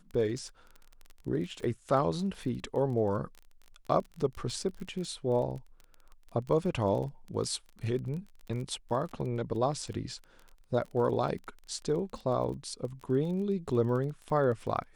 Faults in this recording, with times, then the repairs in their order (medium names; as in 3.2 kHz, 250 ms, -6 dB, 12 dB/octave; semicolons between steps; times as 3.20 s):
crackle 24 per s -38 dBFS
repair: de-click